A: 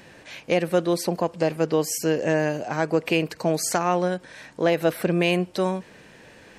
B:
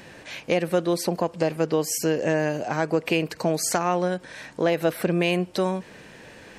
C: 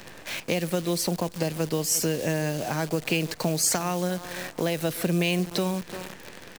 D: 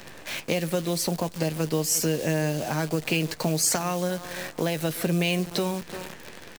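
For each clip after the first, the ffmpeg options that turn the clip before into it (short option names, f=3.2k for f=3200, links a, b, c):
-af "acompressor=threshold=-28dB:ratio=1.5,volume=3dB"
-filter_complex "[0:a]asplit=2[a][b];[b]adelay=347,lowpass=f=3.3k:p=1,volume=-19dB,asplit=2[c][d];[d]adelay=347,lowpass=f=3.3k:p=1,volume=0.37,asplit=2[e][f];[f]adelay=347,lowpass=f=3.3k:p=1,volume=0.37[g];[a][c][e][g]amix=inputs=4:normalize=0,acrusher=bits=7:dc=4:mix=0:aa=0.000001,acrossover=split=190|3000[h][i][j];[i]acompressor=threshold=-34dB:ratio=2.5[k];[h][k][j]amix=inputs=3:normalize=0,volume=3.5dB"
-filter_complex "[0:a]asplit=2[a][b];[b]adelay=13,volume=-11.5dB[c];[a][c]amix=inputs=2:normalize=0"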